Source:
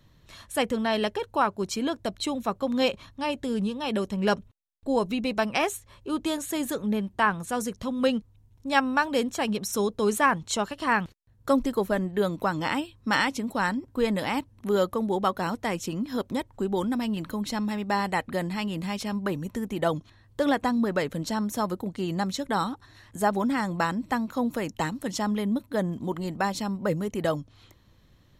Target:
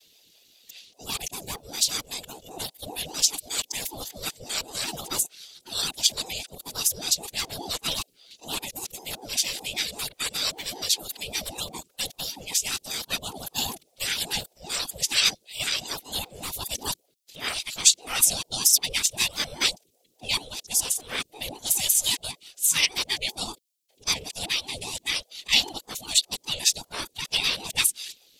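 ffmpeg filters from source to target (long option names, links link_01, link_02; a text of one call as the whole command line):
ffmpeg -i in.wav -filter_complex "[0:a]areverse,afftfilt=real='hypot(re,im)*cos(2*PI*random(0))':imag='hypot(re,im)*sin(2*PI*random(1))':win_size=512:overlap=0.75,acrossover=split=180|1100|1800[link_01][link_02][link_03][link_04];[link_04]aexciter=amount=14.8:drive=7.5:freq=2300[link_05];[link_01][link_02][link_03][link_05]amix=inputs=4:normalize=0,aeval=exprs='val(0)*sin(2*PI*440*n/s+440*0.45/5.1*sin(2*PI*5.1*n/s))':channel_layout=same,volume=-4.5dB" out.wav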